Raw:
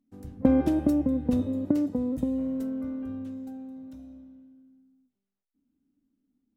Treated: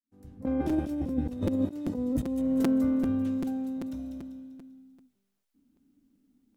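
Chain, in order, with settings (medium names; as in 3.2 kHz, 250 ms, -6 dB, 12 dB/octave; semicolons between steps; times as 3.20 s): fade-in on the opening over 1.48 s; compressor with a negative ratio -31 dBFS, ratio -0.5; feedback echo behind a high-pass 196 ms, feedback 44%, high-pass 2.3 kHz, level -6 dB; crackling interface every 0.39 s, samples 256, repeat, from 0.69 s; trim +4.5 dB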